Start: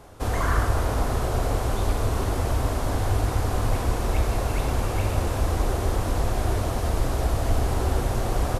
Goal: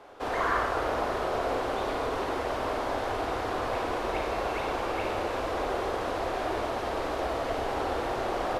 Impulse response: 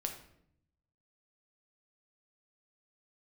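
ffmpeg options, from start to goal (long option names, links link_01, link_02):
-filter_complex "[0:a]acrossover=split=290 4400:gain=0.0891 1 0.141[link_01][link_02][link_03];[link_01][link_02][link_03]amix=inputs=3:normalize=0,asplit=2[link_04][link_05];[1:a]atrim=start_sample=2205,adelay=54[link_06];[link_05][link_06]afir=irnorm=-1:irlink=0,volume=-5.5dB[link_07];[link_04][link_07]amix=inputs=2:normalize=0"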